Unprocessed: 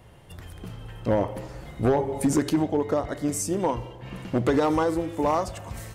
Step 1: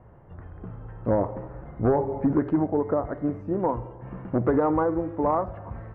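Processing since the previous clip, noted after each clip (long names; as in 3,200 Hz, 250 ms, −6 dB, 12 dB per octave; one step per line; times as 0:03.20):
low-pass filter 1,500 Hz 24 dB per octave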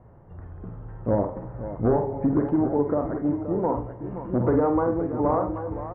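high-shelf EQ 2,100 Hz −10 dB
on a send: multi-tap delay 48/81/524/778/794 ms −7/−16.5/−11.5/−12/−13.5 dB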